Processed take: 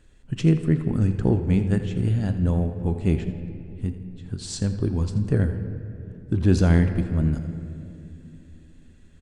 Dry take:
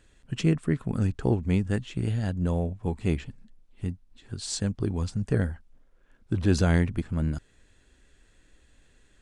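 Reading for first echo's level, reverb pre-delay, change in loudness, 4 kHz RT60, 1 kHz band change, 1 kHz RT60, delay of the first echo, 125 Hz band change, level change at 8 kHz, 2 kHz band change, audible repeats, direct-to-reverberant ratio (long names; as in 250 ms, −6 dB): −14.5 dB, 3 ms, +4.5 dB, 1.5 s, +0.5 dB, 2.4 s, 83 ms, +5.5 dB, −1.0 dB, 0.0 dB, 2, 7.5 dB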